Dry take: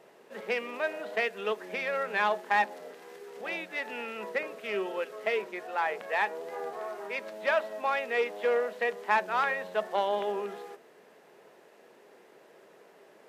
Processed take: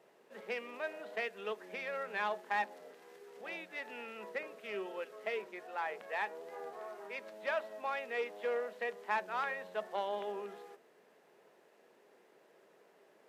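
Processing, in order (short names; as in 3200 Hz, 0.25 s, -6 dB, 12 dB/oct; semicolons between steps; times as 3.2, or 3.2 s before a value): HPF 100 Hz; gain -8.5 dB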